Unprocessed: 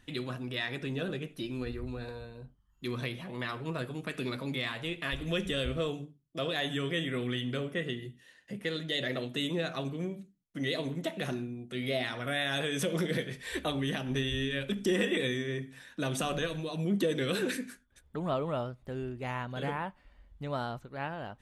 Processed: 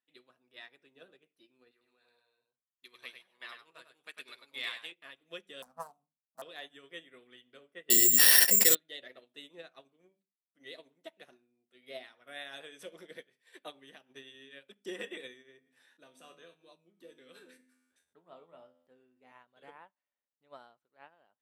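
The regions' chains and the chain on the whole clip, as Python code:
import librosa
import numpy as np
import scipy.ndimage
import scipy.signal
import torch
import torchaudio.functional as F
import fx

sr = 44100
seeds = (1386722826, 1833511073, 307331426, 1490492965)

y = fx.chain(x, sr, fx.tilt_shelf(db=-7.5, hz=930.0),
    fx.echo_single(ms=100, db=-3.5), at=(1.71, 4.92))
y = fx.chain(y, sr, fx.self_delay(depth_ms=0.36),
    fx.curve_eq(hz=(140.0, 230.0, 350.0, 730.0, 1200.0, 2200.0, 3400.0, 5200.0, 11000.0), db=(0, 12, -26, 9, 8, -16, -18, -5, 7)), at=(5.62, 6.42))
y = fx.chain(y, sr, fx.resample_bad(factor=6, down='none', up='zero_stuff'),
    fx.env_flatten(amount_pct=100), at=(7.9, 8.75))
y = fx.chain(y, sr, fx.low_shelf(hz=280.0, db=5.0),
    fx.comb_fb(f0_hz=85.0, decay_s=0.44, harmonics='all', damping=0.0, mix_pct=80),
    fx.env_flatten(amount_pct=70), at=(15.57, 19.32))
y = scipy.signal.sosfilt(scipy.signal.butter(2, 390.0, 'highpass', fs=sr, output='sos'), y)
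y = fx.notch(y, sr, hz=6700.0, q=12.0)
y = fx.upward_expand(y, sr, threshold_db=-43.0, expansion=2.5)
y = y * librosa.db_to_amplitude(3.5)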